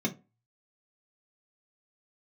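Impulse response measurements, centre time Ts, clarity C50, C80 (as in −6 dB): 8 ms, 16.5 dB, 24.0 dB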